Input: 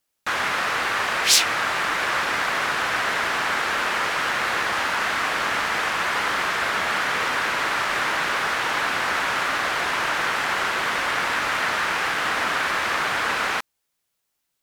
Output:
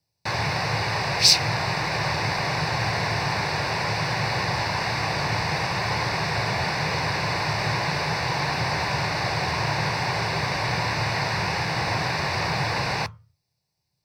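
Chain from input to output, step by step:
low shelf with overshoot 170 Hz +9.5 dB, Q 3
convolution reverb RT60 0.35 s, pre-delay 3 ms, DRR 16 dB
wrong playback speed 24 fps film run at 25 fps
level −6.5 dB

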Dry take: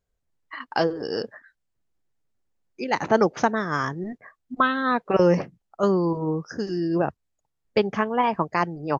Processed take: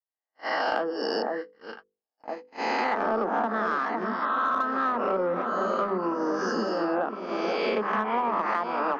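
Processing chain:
peak hold with a rise ahead of every peak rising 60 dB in 1.17 s
dynamic equaliser 1,300 Hz, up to +7 dB, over −38 dBFS, Q 3.6
treble cut that deepens with the level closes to 1,100 Hz, closed at −12.5 dBFS
Butterworth high-pass 200 Hz 72 dB per octave
on a send: delay that swaps between a low-pass and a high-pass 505 ms, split 1,100 Hz, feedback 74%, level −9.5 dB
on the sum: noise gate −32 dBFS, range −59 dB
parametric band 370 Hz −3 dB 0.77 octaves
in parallel at −4.5 dB: soft clipping −16.5 dBFS, distortion −12 dB
on the sum: mains-hum notches 50/100/150/200/250/300/350/400/450/500 Hz
downward compressor, threshold −24 dBFS, peak gain reduction 13 dB

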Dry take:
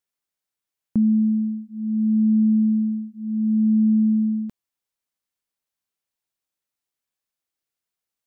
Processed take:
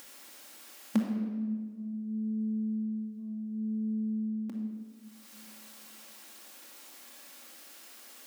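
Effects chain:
stylus tracing distortion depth 0.055 ms
upward compression, threshold −20 dBFS
linear-phase brick-wall high-pass 200 Hz
rectangular room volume 1,800 cubic metres, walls mixed, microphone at 2.3 metres
level −4.5 dB

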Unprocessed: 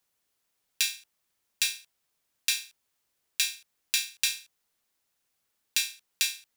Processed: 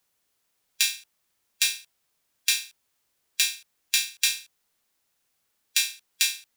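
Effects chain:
harmonic and percussive parts rebalanced harmonic +3 dB
level +2 dB

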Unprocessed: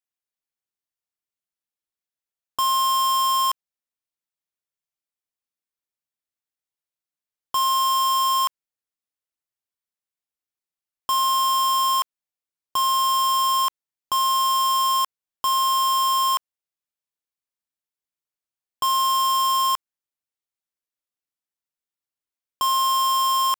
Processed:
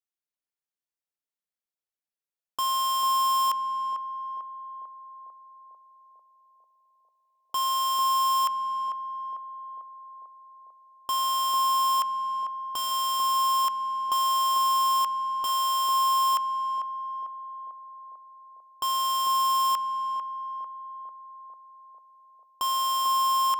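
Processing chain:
parametric band 98 Hz −14.5 dB 0.48 octaves
on a send: feedback echo with a band-pass in the loop 446 ms, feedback 73%, band-pass 570 Hz, level −3.5 dB
on the sum: level −5.5 dB

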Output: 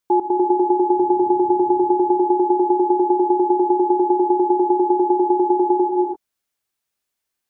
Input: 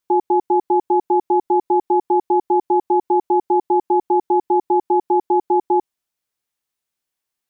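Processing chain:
0:00.96–0:01.92: noise in a band 77–330 Hz −50 dBFS
reverb whose tail is shaped and stops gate 370 ms rising, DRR 2 dB

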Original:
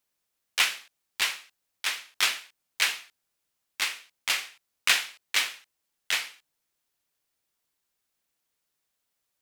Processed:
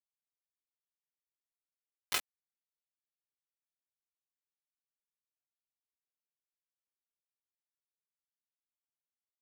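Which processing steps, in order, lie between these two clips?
source passing by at 0:02.04, 15 m/s, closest 2.6 metres
stiff-string resonator 150 Hz, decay 0.25 s, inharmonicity 0.03
hollow resonant body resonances 280/440/4,000 Hz, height 8 dB, ringing for 25 ms
bit reduction 5 bits
bass and treble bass −6 dB, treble −3 dB
level +5 dB

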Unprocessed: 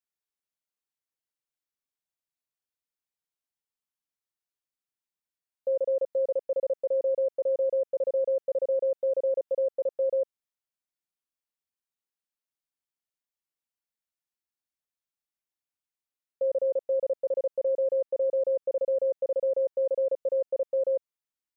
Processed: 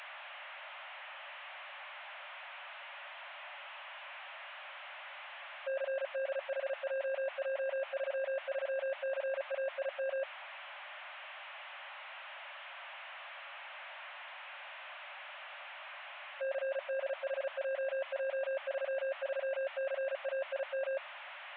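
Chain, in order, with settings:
linear delta modulator 16 kbit/s, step −42 dBFS
linear-phase brick-wall high-pass 540 Hz
level +2 dB

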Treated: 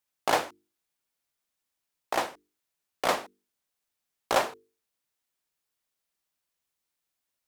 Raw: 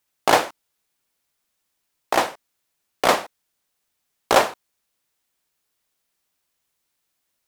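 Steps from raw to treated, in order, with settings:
mains-hum notches 50/100/150/200/250/300/350/400/450 Hz
level −8.5 dB

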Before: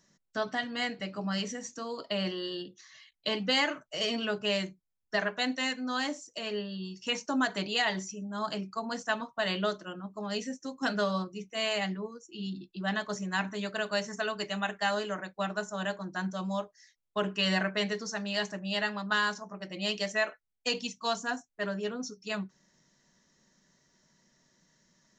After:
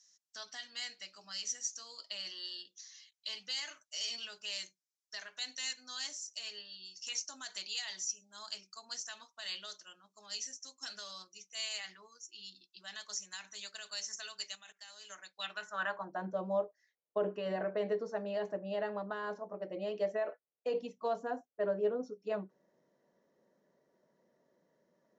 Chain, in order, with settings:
0:11.78–0:12.24: parametric band 1,400 Hz +11.5 dB → +4.5 dB 2 octaves
brickwall limiter −23.5 dBFS, peak gain reduction 10.5 dB
0:14.55–0:15.10: output level in coarse steps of 21 dB
band-pass filter sweep 5,900 Hz → 510 Hz, 0:15.24–0:16.24
level +6.5 dB

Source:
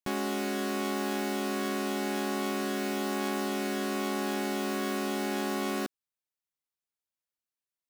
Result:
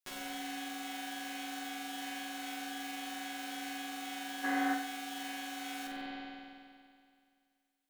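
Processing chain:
lower of the sound and its delayed copy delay 7.8 ms
brickwall limiter −30 dBFS, peak gain reduction 8 dB
tilt shelving filter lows −9.5 dB
spring reverb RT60 2.2 s, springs 47 ms, chirp 25 ms, DRR −4 dB
downward compressor 4 to 1, threshold −37 dBFS, peak gain reduction 7.5 dB
gain on a spectral selection 0:04.44–0:04.74, 210–2,100 Hz +12 dB
flutter between parallel walls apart 8.1 metres, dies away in 0.46 s
level −4 dB

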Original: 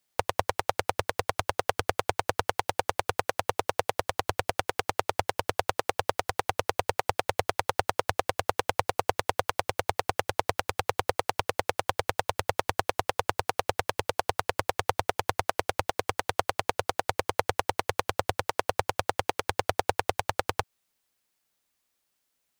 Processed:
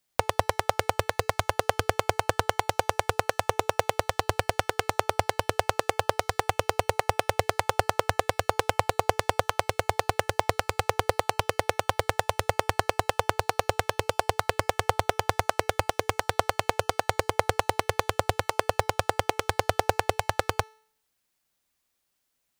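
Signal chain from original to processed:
low-shelf EQ 130 Hz +4.5 dB
hum removal 437 Hz, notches 27
in parallel at −10.5 dB: bit reduction 4 bits

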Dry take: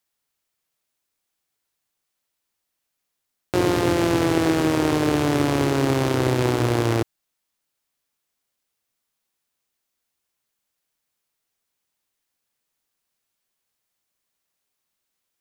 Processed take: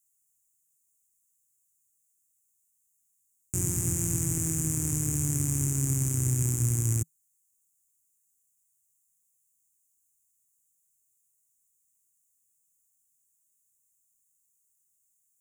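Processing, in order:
drawn EQ curve 160 Hz 0 dB, 570 Hz −29 dB, 2,400 Hz −17 dB, 4,200 Hz −28 dB, 7,000 Hz +14 dB, 14,000 Hz +8 dB
level −2 dB

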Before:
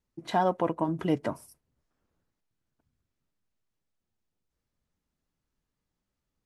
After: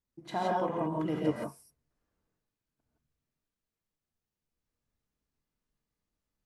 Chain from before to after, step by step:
reverb whose tail is shaped and stops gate 190 ms rising, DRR −3.5 dB
level −8 dB

